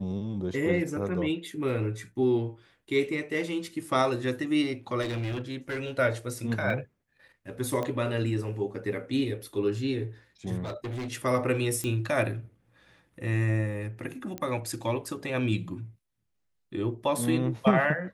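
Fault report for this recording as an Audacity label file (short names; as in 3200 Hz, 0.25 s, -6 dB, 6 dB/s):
5.010000	5.900000	clipped -28.5 dBFS
6.700000	6.700000	gap 2.2 ms
7.830000	7.830000	pop -19 dBFS
10.630000	11.130000	clipped -31.5 dBFS
11.840000	11.840000	pop -19 dBFS
14.380000	14.380000	pop -19 dBFS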